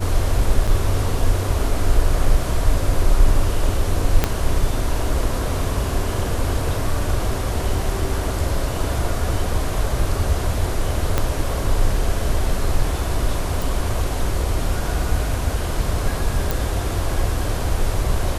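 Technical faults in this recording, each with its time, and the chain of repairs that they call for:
0.67–0.68 s: dropout 5.9 ms
4.24 s: pop -2 dBFS
11.18 s: pop -4 dBFS
13.62 s: pop
16.51 s: pop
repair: de-click; interpolate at 0.67 s, 5.9 ms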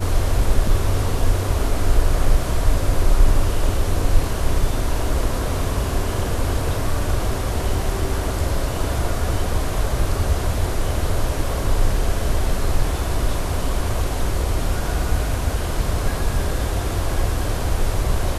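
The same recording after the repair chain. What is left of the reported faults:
4.24 s: pop
11.18 s: pop

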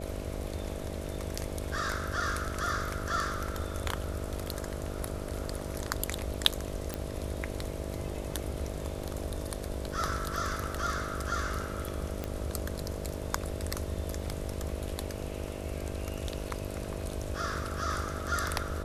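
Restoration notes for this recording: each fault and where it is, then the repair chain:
buzz 50 Hz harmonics 13 -40 dBFS
6.94 s: pop -17 dBFS
12.24 s: pop -19 dBFS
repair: de-click; de-hum 50 Hz, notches 13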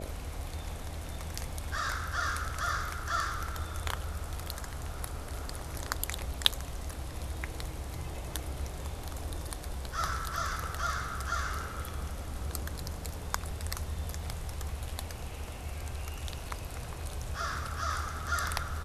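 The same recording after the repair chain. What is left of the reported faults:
nothing left

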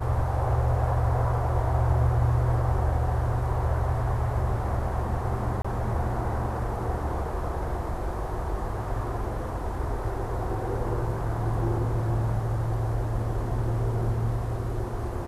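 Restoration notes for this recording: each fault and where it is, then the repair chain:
5.62–5.64 s: dropout 25 ms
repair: interpolate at 5.62 s, 25 ms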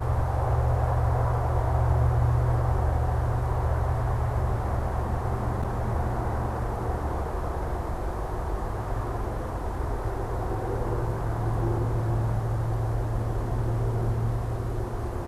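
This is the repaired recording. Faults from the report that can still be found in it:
nothing left

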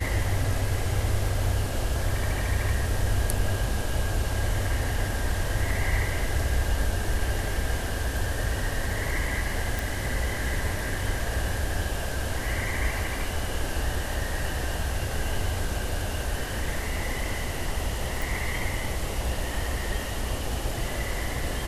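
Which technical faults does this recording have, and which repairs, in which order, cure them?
9.79 s: pop
18.22 s: pop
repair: de-click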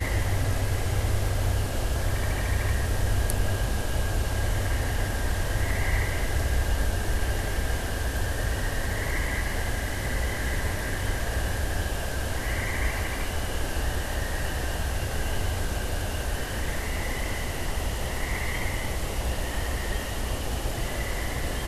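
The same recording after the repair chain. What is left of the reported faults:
nothing left

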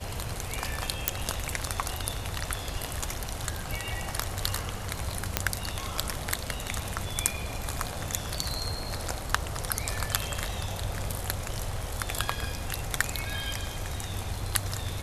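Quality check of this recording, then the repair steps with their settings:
1.08 s: pop
5.37 s: pop -4 dBFS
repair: de-click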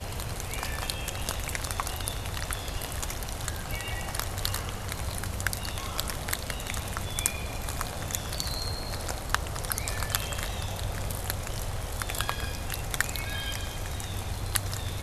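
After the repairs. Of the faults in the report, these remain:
nothing left

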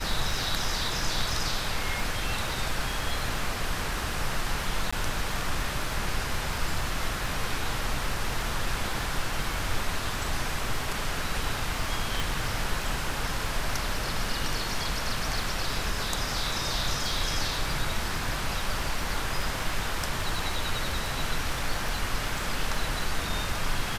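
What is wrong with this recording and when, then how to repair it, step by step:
crackle 22 per s -32 dBFS
4.91–4.92 s: dropout 15 ms
12.20 s: pop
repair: de-click; interpolate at 4.91 s, 15 ms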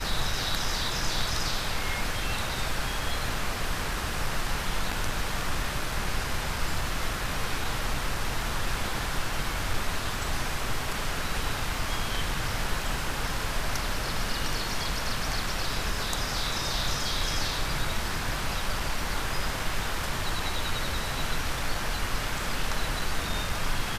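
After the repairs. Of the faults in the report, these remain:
12.20 s: pop

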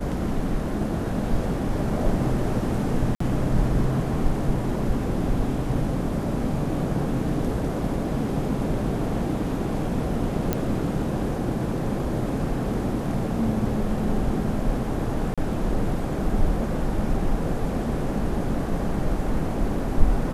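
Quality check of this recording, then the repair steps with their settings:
3.15–3.20 s: dropout 54 ms
10.53 s: pop -9 dBFS
15.34–15.38 s: dropout 36 ms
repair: de-click; interpolate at 3.15 s, 54 ms; interpolate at 15.34 s, 36 ms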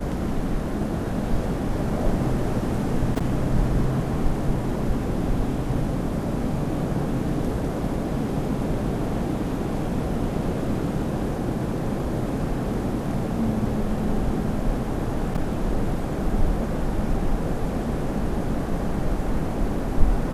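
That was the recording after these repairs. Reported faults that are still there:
nothing left

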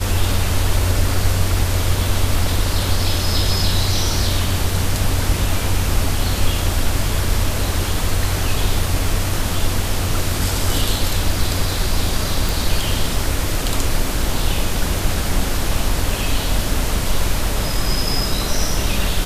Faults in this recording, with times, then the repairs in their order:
12.49 s: pop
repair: de-click

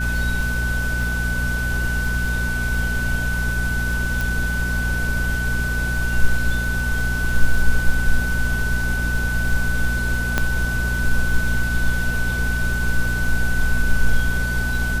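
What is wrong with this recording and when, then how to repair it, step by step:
crackle 43 per s -28 dBFS
hum 60 Hz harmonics 4 -24 dBFS
whine 1.5 kHz -24 dBFS
4.21 s: pop
10.38 s: pop -4 dBFS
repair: de-click; de-hum 60 Hz, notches 4; band-stop 1.5 kHz, Q 30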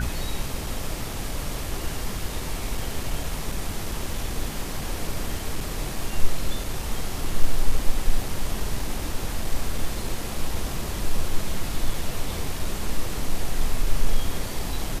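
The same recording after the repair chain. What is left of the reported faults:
4.21 s: pop

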